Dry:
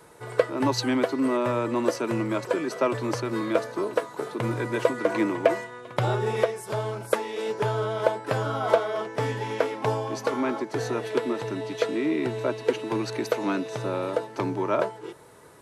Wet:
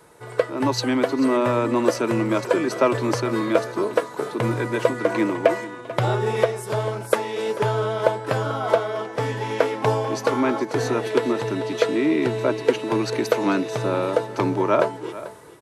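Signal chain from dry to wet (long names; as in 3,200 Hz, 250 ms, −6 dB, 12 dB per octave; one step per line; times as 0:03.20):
automatic gain control gain up to 6 dB
on a send: single-tap delay 440 ms −16 dB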